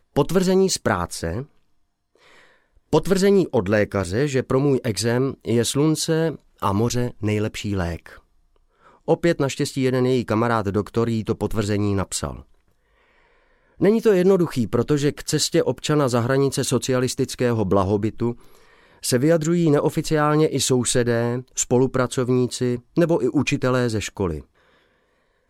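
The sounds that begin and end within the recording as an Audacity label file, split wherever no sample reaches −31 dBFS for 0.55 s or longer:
2.930000	8.090000	sound
9.080000	12.390000	sound
13.800000	18.330000	sound
19.040000	24.400000	sound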